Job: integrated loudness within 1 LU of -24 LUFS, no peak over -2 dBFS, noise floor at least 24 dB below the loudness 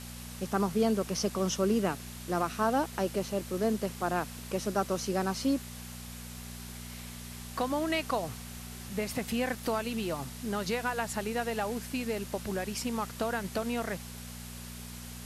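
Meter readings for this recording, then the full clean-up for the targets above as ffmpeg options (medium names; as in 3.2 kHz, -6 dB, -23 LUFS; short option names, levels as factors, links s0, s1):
hum 60 Hz; highest harmonic 240 Hz; hum level -43 dBFS; noise floor -44 dBFS; noise floor target -57 dBFS; loudness -33.0 LUFS; peak level -15.5 dBFS; loudness target -24.0 LUFS
-> -af "bandreject=f=60:t=h:w=4,bandreject=f=120:t=h:w=4,bandreject=f=180:t=h:w=4,bandreject=f=240:t=h:w=4"
-af "afftdn=nr=13:nf=-44"
-af "volume=2.82"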